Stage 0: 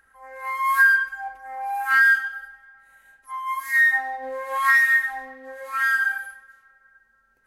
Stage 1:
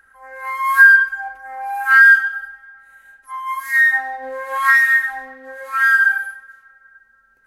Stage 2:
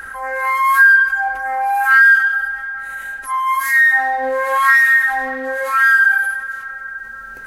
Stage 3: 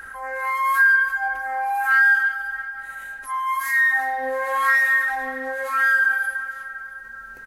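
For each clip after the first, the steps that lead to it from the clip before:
peaking EQ 1.5 kHz +8.5 dB 0.27 oct; trim +2.5 dB
level flattener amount 50%; trim -2 dB
feedback delay 337 ms, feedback 41%, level -15 dB; trim -6.5 dB

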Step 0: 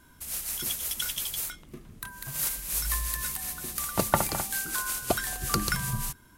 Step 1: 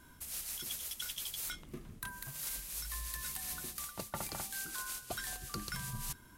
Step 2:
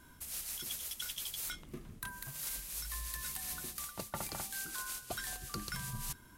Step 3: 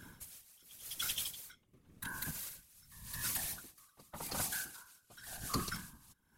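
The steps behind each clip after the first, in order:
dynamic bell 4.1 kHz, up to +4 dB, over -44 dBFS, Q 0.81; reverse; compression 12:1, threshold -36 dBFS, peak gain reduction 21 dB; reverse; trim -1.5 dB
no audible change
comb of notches 340 Hz; whisper effect; logarithmic tremolo 0.9 Hz, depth 26 dB; trim +6 dB

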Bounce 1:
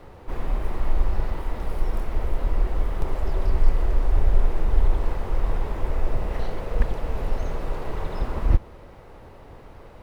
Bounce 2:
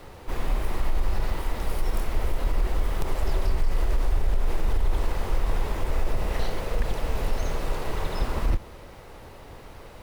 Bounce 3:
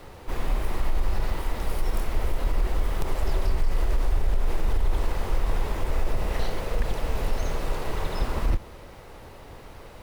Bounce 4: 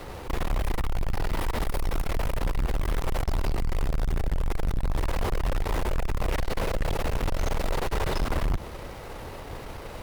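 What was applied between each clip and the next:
treble shelf 2.6 kHz +11.5 dB; peak limiter -14.5 dBFS, peak gain reduction 9.5 dB
no audible change
valve stage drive 30 dB, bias 0.55; trim +8.5 dB

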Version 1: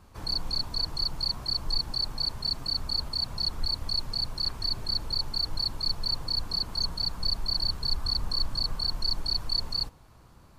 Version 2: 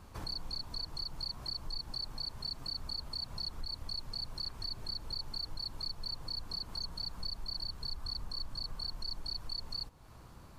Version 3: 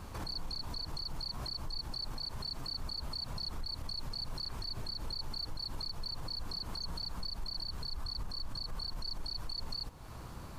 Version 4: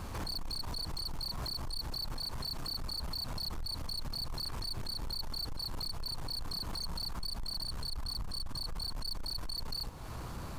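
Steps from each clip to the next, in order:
compression 3:1, threshold -41 dBFS, peak gain reduction 14.5 dB; trim +1 dB
peak limiter -39 dBFS, peak gain reduction 11 dB; trim +7.5 dB
saturation -39.5 dBFS, distortion -12 dB; trim +6 dB

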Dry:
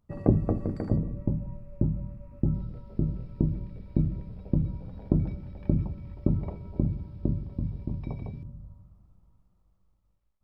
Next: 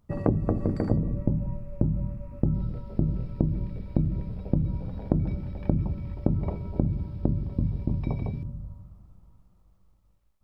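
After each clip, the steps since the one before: compression 5:1, threshold -26 dBFS, peak gain reduction 11.5 dB; trim +6.5 dB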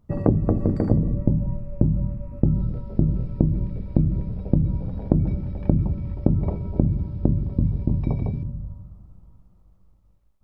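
tilt shelf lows +4 dB; trim +1.5 dB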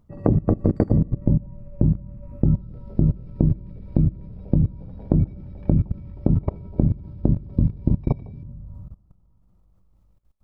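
level held to a coarse grid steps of 21 dB; trim +5 dB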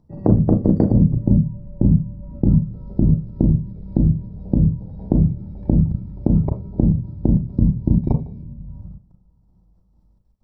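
reverberation RT60 0.20 s, pre-delay 34 ms, DRR 6 dB; trim -9.5 dB

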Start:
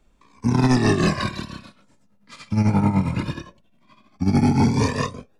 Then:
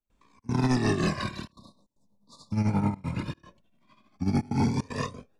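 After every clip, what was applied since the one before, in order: spectral selection erased 1.52–2.52 s, 1.2–3.5 kHz; trance gate ".xxx.xxxxxxxxxx" 153 bpm -24 dB; trim -7 dB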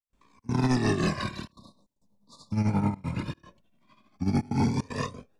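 gate with hold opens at -60 dBFS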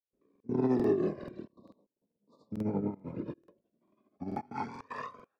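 band-pass sweep 410 Hz -> 1.2 kHz, 4.06–4.58 s; rotary cabinet horn 1 Hz, later 5.5 Hz, at 2.04 s; crackling interface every 0.44 s, samples 2048, repeat, from 0.31 s; trim +5.5 dB

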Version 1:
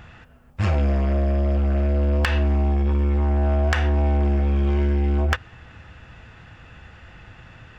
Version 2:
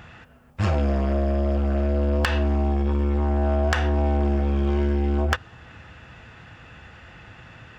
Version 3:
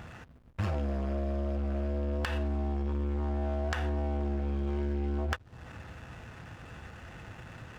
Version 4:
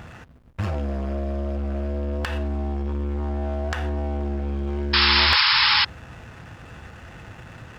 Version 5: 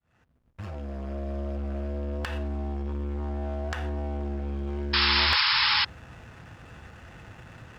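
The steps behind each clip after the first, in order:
dynamic bell 2.2 kHz, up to -5 dB, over -48 dBFS, Q 2.2; high-pass 95 Hz 6 dB/octave; trim +1.5 dB
compression 2.5:1, threshold -33 dBFS, peak gain reduction 11 dB; hysteresis with a dead band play -44.5 dBFS
painted sound noise, 4.93–5.85 s, 820–5400 Hz -23 dBFS; trim +5 dB
fade-in on the opening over 1.38 s; trim -5 dB

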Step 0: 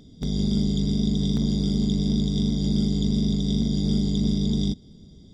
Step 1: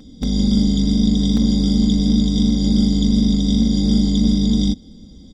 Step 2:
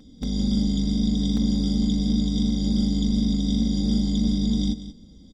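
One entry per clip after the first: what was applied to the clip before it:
comb 3.8 ms, depth 68%; trim +5.5 dB
delay 184 ms -13 dB; trim -7 dB

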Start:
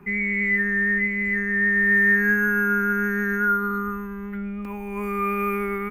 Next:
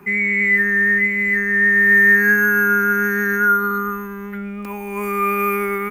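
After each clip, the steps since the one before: high-pass 56 Hz 6 dB/octave; tone controls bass -6 dB, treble +7 dB; trim +6 dB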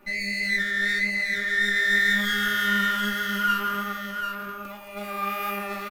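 comb filter that takes the minimum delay 3.4 ms; flange 1.8 Hz, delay 9.4 ms, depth 5.6 ms, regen +42%; delay 744 ms -6 dB; trim -4.5 dB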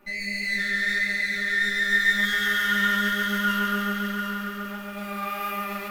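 bit-crushed delay 138 ms, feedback 80%, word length 9-bit, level -5.5 dB; trim -2.5 dB

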